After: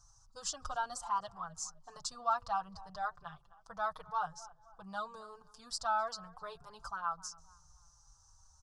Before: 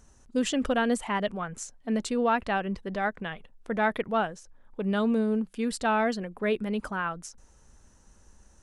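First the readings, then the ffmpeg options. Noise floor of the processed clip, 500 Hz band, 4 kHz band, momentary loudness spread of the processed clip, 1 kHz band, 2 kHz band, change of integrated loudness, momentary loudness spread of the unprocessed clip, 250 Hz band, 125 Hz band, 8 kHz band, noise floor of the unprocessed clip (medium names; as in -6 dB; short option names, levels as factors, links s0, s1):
-65 dBFS, -17.0 dB, -7.0 dB, 18 LU, -5.0 dB, -13.5 dB, -10.0 dB, 12 LU, -29.0 dB, -19.0 dB, -3.0 dB, -58 dBFS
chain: -filter_complex "[0:a]firequalizer=gain_entry='entry(150,0);entry(220,-27);entry(440,-20);entry(770,1);entry(1200,7);entry(2100,-24);entry(3100,-9);entry(4900,11);entry(10000,-4)':delay=0.05:min_phase=1,asplit=2[s0][s1];[s1]adelay=258,lowpass=f=1700:p=1,volume=0.119,asplit=2[s2][s3];[s3]adelay=258,lowpass=f=1700:p=1,volume=0.4,asplit=2[s4][s5];[s5]adelay=258,lowpass=f=1700:p=1,volume=0.4[s6];[s0][s2][s4][s6]amix=inputs=4:normalize=0,asplit=2[s7][s8];[s8]adelay=5.4,afreqshift=-0.87[s9];[s7][s9]amix=inputs=2:normalize=1,volume=0.596"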